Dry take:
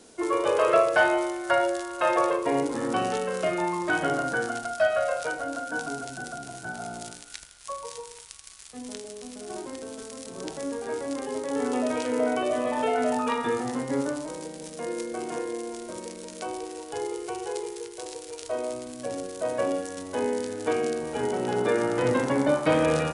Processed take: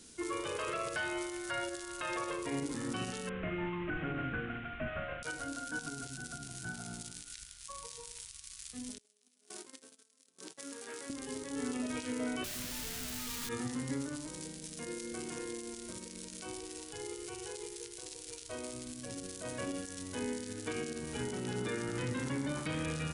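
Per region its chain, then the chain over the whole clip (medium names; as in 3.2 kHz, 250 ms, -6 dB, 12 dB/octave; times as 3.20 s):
3.29–5.23 s: one-bit delta coder 16 kbps, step -30 dBFS + distance through air 420 m + band-stop 940 Hz, Q 14
8.98–11.10 s: gate -37 dBFS, range -26 dB + Bessel high-pass 450 Hz + transformer saturation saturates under 2 kHz
12.44–13.49 s: one-bit comparator + tone controls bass +3 dB, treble +6 dB
whole clip: amplifier tone stack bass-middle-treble 6-0-2; peak limiter -42.5 dBFS; trim +15 dB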